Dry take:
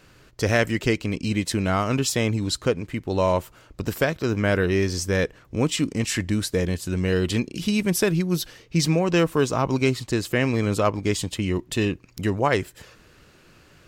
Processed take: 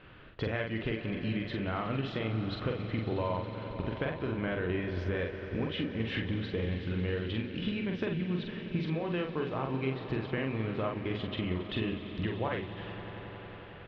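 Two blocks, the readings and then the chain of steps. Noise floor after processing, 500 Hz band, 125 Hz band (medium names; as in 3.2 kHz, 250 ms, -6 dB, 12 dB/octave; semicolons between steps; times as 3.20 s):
-46 dBFS, -11.0 dB, -9.0 dB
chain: elliptic low-pass 3.4 kHz, stop band 70 dB; compression, threshold -32 dBFS, peak gain reduction 15.5 dB; doubling 45 ms -4 dB; echo with a slow build-up 91 ms, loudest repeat 5, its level -16 dB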